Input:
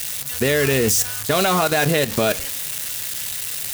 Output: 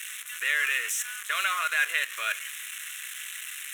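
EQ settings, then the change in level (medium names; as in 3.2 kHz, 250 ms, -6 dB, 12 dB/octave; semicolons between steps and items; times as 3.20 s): high-pass 1 kHz 24 dB/octave; distance through air 51 m; static phaser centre 2 kHz, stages 4; 0.0 dB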